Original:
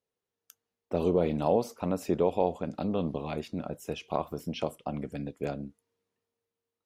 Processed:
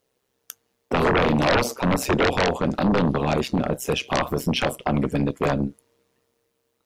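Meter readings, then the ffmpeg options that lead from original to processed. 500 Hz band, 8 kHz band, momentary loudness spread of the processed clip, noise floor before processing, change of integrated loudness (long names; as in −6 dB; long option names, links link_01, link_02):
+6.0 dB, +16.0 dB, 5 LU, below −85 dBFS, +9.0 dB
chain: -af "tremolo=f=130:d=0.71,aeval=exprs='0.237*sin(PI/2*7.08*val(0)/0.237)':channel_layout=same,volume=-2dB"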